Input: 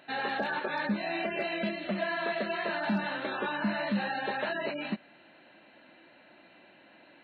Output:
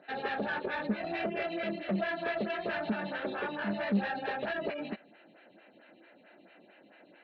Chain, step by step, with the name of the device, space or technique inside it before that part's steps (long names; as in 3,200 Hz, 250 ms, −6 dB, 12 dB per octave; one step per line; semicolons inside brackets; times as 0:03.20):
vibe pedal into a guitar amplifier (phaser with staggered stages 4.5 Hz; tube saturation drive 28 dB, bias 0.5; loudspeaker in its box 76–4,200 Hz, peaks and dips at 190 Hz +4 dB, 440 Hz +4 dB, 1,000 Hz −7 dB)
level +3.5 dB